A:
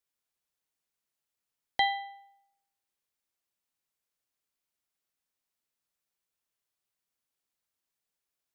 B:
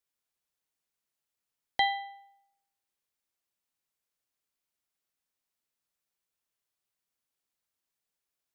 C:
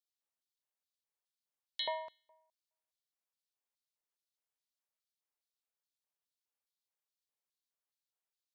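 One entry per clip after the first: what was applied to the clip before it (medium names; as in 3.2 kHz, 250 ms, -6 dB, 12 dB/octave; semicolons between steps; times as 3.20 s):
no audible change
LFO high-pass square 2.4 Hz 680–3900 Hz; ring modulator 160 Hz; trim -7 dB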